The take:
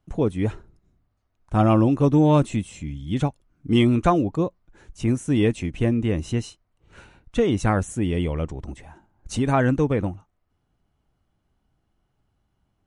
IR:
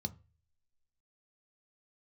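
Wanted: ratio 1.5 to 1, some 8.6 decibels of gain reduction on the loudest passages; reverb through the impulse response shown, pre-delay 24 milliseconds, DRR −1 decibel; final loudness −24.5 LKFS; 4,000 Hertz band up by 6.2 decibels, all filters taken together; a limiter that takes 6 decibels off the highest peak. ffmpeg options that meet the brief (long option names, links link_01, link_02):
-filter_complex "[0:a]equalizer=frequency=4000:width_type=o:gain=8.5,acompressor=threshold=-37dB:ratio=1.5,alimiter=limit=-20dB:level=0:latency=1,asplit=2[link_01][link_02];[1:a]atrim=start_sample=2205,adelay=24[link_03];[link_02][link_03]afir=irnorm=-1:irlink=0,volume=2.5dB[link_04];[link_01][link_04]amix=inputs=2:normalize=0,volume=-3dB"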